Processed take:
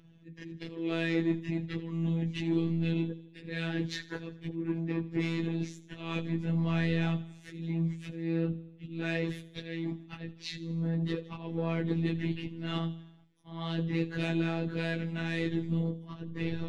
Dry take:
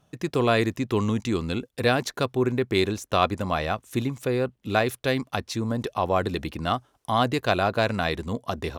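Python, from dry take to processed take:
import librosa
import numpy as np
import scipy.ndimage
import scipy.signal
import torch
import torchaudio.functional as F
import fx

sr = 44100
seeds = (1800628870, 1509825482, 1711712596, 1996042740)

p1 = scipy.signal.sosfilt(scipy.signal.butter(2, 2200.0, 'lowpass', fs=sr, output='sos'), x)
p2 = fx.band_shelf(p1, sr, hz=870.0, db=-15.5, octaves=1.7)
p3 = fx.over_compress(p2, sr, threshold_db=-34.0, ratio=-1.0)
p4 = p2 + F.gain(torch.from_numpy(p3), 0.5).numpy()
p5 = fx.auto_swell(p4, sr, attack_ms=141.0)
p6 = 10.0 ** (-17.5 / 20.0) * np.tanh(p5 / 10.0 ** (-17.5 / 20.0))
p7 = fx.stretch_vocoder_free(p6, sr, factor=1.9)
p8 = fx.robotise(p7, sr, hz=165.0)
y = p8 + fx.echo_feedback(p8, sr, ms=79, feedback_pct=56, wet_db=-17.5, dry=0)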